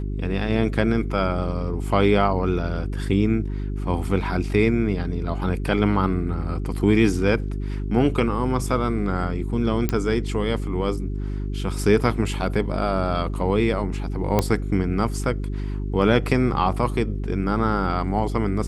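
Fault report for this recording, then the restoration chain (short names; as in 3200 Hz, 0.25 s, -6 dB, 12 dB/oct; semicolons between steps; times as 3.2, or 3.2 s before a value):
hum 50 Hz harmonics 8 -27 dBFS
9.89 pop -9 dBFS
14.39 pop -6 dBFS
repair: de-click; de-hum 50 Hz, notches 8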